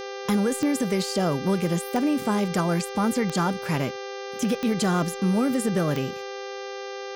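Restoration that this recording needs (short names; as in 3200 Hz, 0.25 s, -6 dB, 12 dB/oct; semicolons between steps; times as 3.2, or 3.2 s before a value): de-click; de-hum 396.2 Hz, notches 16; notch 510 Hz, Q 30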